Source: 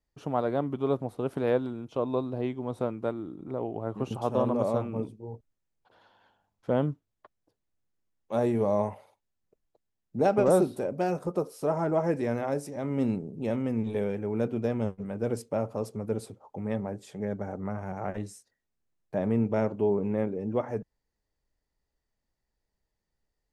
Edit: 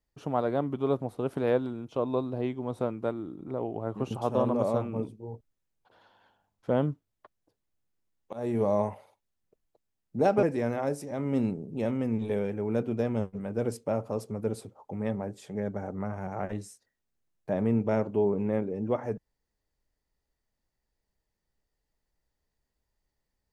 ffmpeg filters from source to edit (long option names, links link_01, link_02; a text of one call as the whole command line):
ffmpeg -i in.wav -filter_complex "[0:a]asplit=3[link_01][link_02][link_03];[link_01]atrim=end=8.33,asetpts=PTS-STARTPTS,afade=type=out:start_time=8.326:duration=0.004:curve=hsin:silence=0.0749894[link_04];[link_02]atrim=start=8.33:end=10.432,asetpts=PTS-STARTPTS,afade=type=in:duration=0.26:silence=0.0749894[link_05];[link_03]atrim=start=12.078[link_06];[link_04][link_05]concat=n=2:v=0:a=1[link_07];[link_07][link_06]acrossfade=duration=0.004:curve1=hsin:curve2=hsin" out.wav